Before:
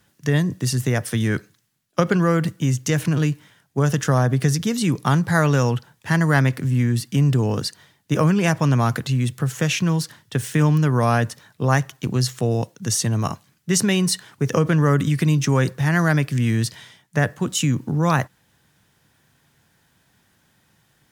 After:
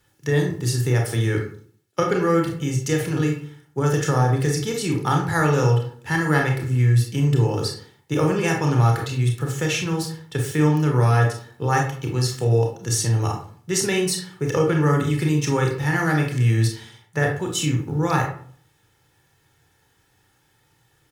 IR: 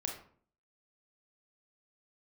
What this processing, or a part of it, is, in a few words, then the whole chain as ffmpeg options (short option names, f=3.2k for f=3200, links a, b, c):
microphone above a desk: -filter_complex "[0:a]aecho=1:1:2.3:0.58[a];[1:a]atrim=start_sample=2205[b];[a][b]afir=irnorm=-1:irlink=0,volume=-2.5dB"